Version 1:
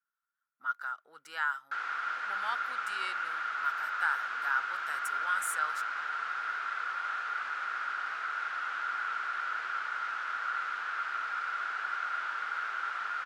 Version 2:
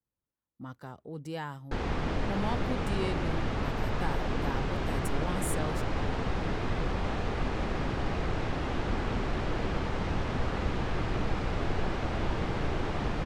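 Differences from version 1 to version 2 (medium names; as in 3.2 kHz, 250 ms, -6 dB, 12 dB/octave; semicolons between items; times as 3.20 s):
background +6.5 dB; master: remove resonant high-pass 1.4 kHz, resonance Q 13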